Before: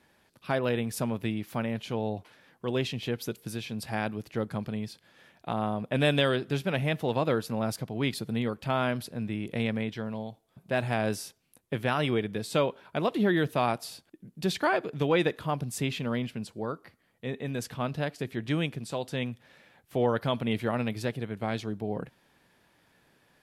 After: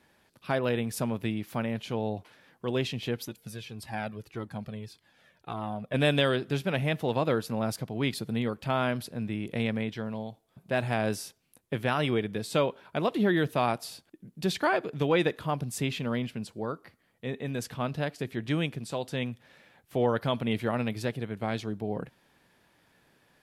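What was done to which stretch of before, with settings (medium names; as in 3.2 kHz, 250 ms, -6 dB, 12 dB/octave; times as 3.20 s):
3.25–5.94 s: Shepard-style flanger falling 1.7 Hz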